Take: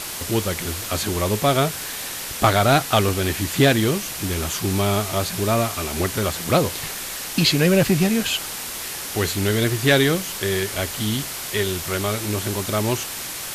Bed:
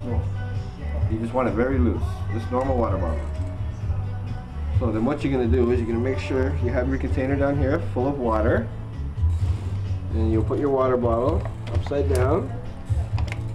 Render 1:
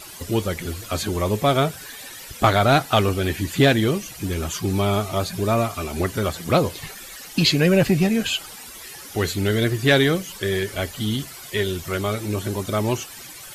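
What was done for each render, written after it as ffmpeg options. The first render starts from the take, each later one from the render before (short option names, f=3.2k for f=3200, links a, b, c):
-af "afftdn=nr=13:nf=-31"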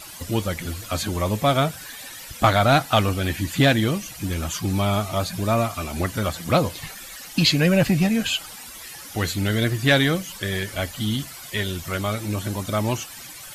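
-af "equalizer=f=400:w=5:g=-10.5"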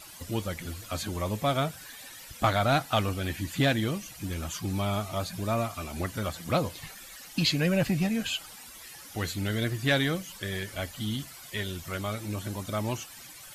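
-af "volume=-7.5dB"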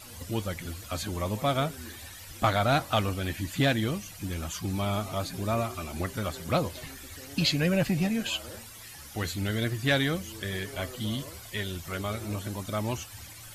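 -filter_complex "[1:a]volume=-24.5dB[a];[0:a][a]amix=inputs=2:normalize=0"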